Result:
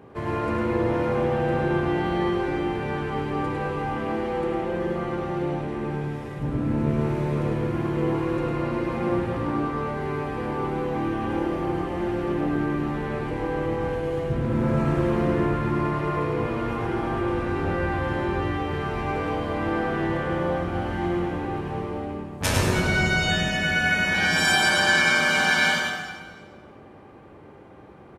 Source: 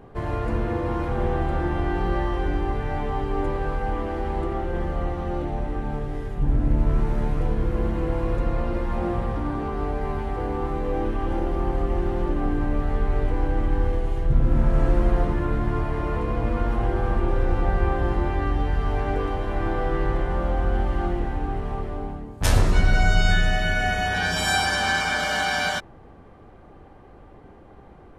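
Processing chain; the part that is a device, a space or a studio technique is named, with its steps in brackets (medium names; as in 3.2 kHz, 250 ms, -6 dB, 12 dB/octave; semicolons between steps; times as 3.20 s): PA in a hall (high-pass 110 Hz 12 dB/octave; peaking EQ 2.4 kHz +4 dB 0.28 oct; delay 103 ms -5 dB; reverberation RT60 1.7 s, pre-delay 60 ms, DRR 4 dB); band-stop 720 Hz, Q 12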